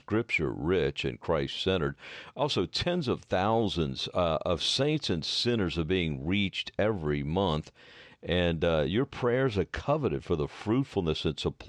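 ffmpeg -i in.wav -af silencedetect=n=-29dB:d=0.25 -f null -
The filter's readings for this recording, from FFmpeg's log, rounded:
silence_start: 1.91
silence_end: 2.39 | silence_duration: 0.48
silence_start: 7.60
silence_end: 8.29 | silence_duration: 0.69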